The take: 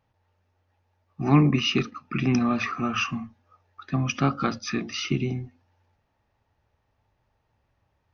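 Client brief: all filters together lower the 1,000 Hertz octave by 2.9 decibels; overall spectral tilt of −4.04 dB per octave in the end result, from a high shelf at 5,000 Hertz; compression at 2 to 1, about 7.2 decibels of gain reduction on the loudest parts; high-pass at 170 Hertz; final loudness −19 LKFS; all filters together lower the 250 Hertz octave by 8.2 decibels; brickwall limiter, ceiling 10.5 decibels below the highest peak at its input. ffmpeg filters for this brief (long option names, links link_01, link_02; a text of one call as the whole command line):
ffmpeg -i in.wav -af "highpass=170,equalizer=frequency=250:width_type=o:gain=-8.5,equalizer=frequency=1000:width_type=o:gain=-4,highshelf=frequency=5000:gain=7,acompressor=threshold=-33dB:ratio=2,volume=18dB,alimiter=limit=-9dB:level=0:latency=1" out.wav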